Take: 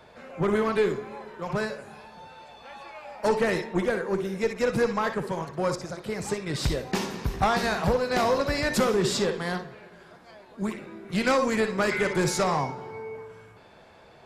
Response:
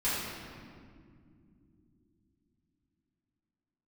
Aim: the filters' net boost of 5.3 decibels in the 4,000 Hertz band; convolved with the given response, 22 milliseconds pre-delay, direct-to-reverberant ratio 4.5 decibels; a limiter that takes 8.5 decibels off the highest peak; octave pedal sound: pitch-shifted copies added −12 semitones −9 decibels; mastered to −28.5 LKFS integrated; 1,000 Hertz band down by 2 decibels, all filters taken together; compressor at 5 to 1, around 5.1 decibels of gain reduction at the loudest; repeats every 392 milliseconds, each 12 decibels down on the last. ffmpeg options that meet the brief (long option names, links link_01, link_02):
-filter_complex "[0:a]equalizer=frequency=1000:width_type=o:gain=-3,equalizer=frequency=4000:width_type=o:gain=6.5,acompressor=threshold=-25dB:ratio=5,alimiter=limit=-22dB:level=0:latency=1,aecho=1:1:392|784|1176:0.251|0.0628|0.0157,asplit=2[link_01][link_02];[1:a]atrim=start_sample=2205,adelay=22[link_03];[link_02][link_03]afir=irnorm=-1:irlink=0,volume=-14dB[link_04];[link_01][link_04]amix=inputs=2:normalize=0,asplit=2[link_05][link_06];[link_06]asetrate=22050,aresample=44100,atempo=2,volume=-9dB[link_07];[link_05][link_07]amix=inputs=2:normalize=0,volume=1dB"